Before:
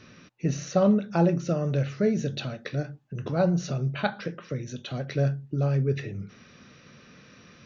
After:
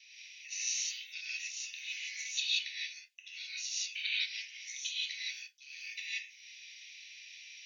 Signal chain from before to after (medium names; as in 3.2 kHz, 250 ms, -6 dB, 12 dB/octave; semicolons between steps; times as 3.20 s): steep high-pass 2.1 kHz 72 dB/octave; gate with hold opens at -60 dBFS; gated-style reverb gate 200 ms rising, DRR -7 dB